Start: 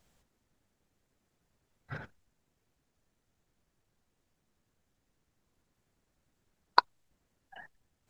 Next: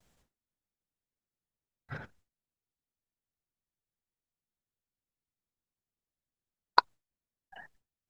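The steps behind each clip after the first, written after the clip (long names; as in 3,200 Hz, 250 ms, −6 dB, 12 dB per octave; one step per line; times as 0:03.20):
noise gate with hold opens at −60 dBFS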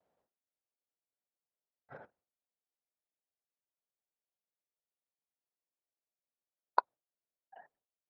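resonant band-pass 620 Hz, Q 1.7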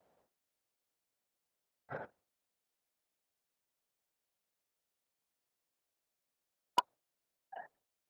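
gain into a clipping stage and back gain 28.5 dB
level +7.5 dB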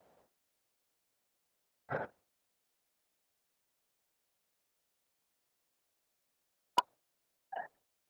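brickwall limiter −26 dBFS, peak gain reduction 5 dB
level +6 dB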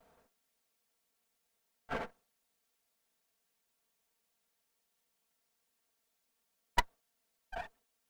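lower of the sound and its delayed copy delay 4.4 ms
level +2 dB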